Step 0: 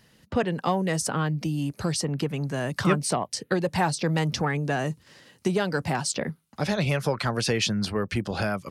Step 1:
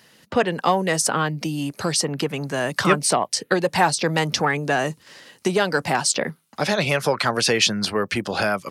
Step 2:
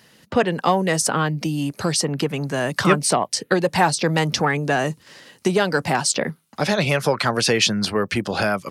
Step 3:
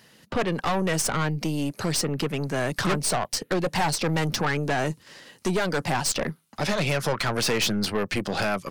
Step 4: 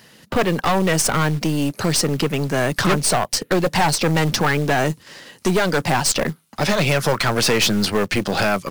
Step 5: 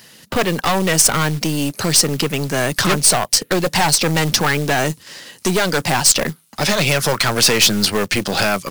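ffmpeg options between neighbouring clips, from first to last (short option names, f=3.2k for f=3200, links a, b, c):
-af "highpass=f=410:p=1,volume=8dB"
-af "lowshelf=f=280:g=4.5"
-af "aeval=exprs='(tanh(10*val(0)+0.5)-tanh(0.5))/10':c=same"
-af "acrusher=bits=5:mode=log:mix=0:aa=0.000001,volume=6.5dB"
-af "highshelf=f=2.9k:g=8.5"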